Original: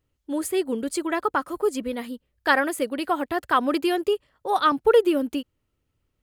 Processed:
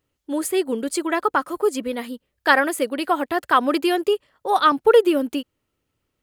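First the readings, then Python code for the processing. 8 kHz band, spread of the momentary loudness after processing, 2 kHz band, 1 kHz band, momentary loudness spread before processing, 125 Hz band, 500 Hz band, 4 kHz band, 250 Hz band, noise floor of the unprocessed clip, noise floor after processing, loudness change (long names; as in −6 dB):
+4.0 dB, 12 LU, +4.0 dB, +4.0 dB, 11 LU, can't be measured, +3.0 dB, +4.0 dB, +2.5 dB, −76 dBFS, −77 dBFS, +3.5 dB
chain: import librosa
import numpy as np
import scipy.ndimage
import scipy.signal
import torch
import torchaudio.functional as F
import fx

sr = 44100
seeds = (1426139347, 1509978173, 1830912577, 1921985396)

y = fx.low_shelf(x, sr, hz=120.0, db=-12.0)
y = F.gain(torch.from_numpy(y), 4.0).numpy()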